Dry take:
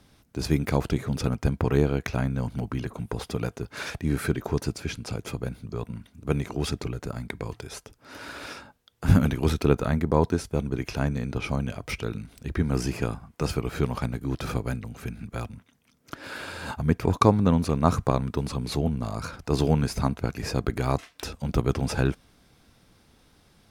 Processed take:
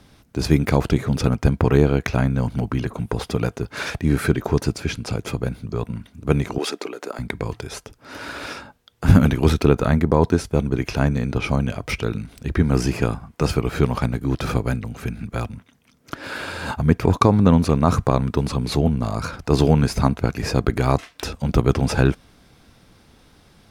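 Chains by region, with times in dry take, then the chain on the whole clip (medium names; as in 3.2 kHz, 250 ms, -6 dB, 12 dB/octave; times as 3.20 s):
6.58–7.19 s: high-pass 320 Hz 24 dB/octave + upward compressor, threshold -38 dBFS
whole clip: treble shelf 6.3 kHz -4 dB; loudness maximiser +8 dB; trim -1 dB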